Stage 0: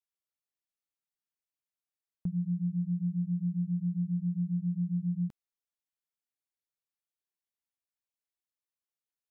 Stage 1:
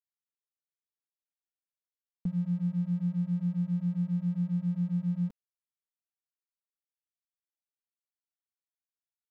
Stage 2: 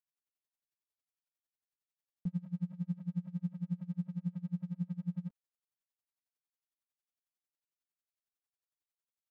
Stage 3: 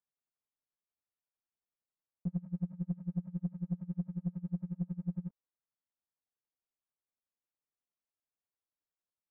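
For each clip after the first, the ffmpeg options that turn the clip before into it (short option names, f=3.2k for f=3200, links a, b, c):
-af "aecho=1:1:4.2:0.76,aeval=exprs='sgn(val(0))*max(abs(val(0))-0.00188,0)':c=same"
-af "acompressor=threshold=-31dB:ratio=6,aeval=exprs='val(0)*pow(10,-27*(0.5-0.5*cos(2*PI*11*n/s))/20)':c=same,volume=2dB"
-af "lowpass=1.3k,aeval=exprs='0.0501*(cos(1*acos(clip(val(0)/0.0501,-1,1)))-cos(1*PI/2))+0.002*(cos(3*acos(clip(val(0)/0.0501,-1,1)))-cos(3*PI/2))+0.002*(cos(4*acos(clip(val(0)/0.0501,-1,1)))-cos(4*PI/2))+0.000398*(cos(6*acos(clip(val(0)/0.0501,-1,1)))-cos(6*PI/2))':c=same,volume=1dB"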